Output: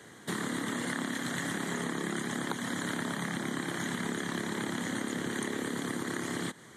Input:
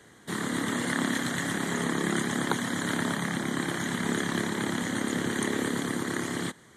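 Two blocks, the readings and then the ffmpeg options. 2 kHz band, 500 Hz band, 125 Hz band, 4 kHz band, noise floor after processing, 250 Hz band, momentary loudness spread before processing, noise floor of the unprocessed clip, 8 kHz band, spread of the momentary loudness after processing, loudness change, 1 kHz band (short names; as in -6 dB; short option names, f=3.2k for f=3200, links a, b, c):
-4.5 dB, -5.0 dB, -5.5 dB, -4.5 dB, -52 dBFS, -5.0 dB, 3 LU, -55 dBFS, -4.5 dB, 1 LU, -5.0 dB, -4.5 dB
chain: -af "highpass=95,acompressor=threshold=-34dB:ratio=6,volume=3dB"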